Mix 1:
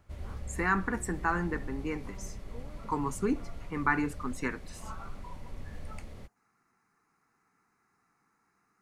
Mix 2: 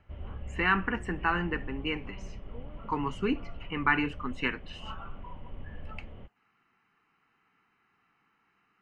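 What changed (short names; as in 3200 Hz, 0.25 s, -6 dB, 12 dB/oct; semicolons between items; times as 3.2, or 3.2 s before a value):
background: add LPF 1200 Hz 12 dB/oct; master: add synth low-pass 3000 Hz, resonance Q 12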